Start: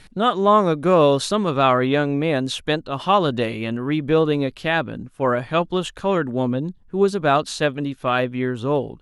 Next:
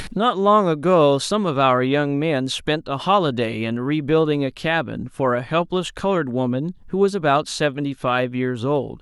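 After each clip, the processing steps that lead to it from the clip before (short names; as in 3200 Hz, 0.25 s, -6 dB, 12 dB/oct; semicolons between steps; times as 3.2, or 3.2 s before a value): upward compressor, threshold -18 dBFS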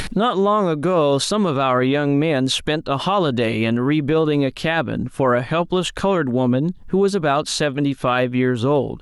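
limiter -13.5 dBFS, peak gain reduction 9.5 dB; gain +5 dB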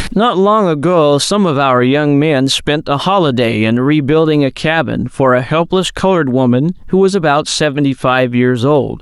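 wow and flutter 52 cents; gain +7 dB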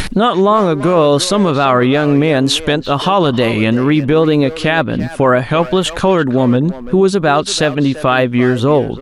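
speakerphone echo 0.34 s, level -12 dB; gain -1 dB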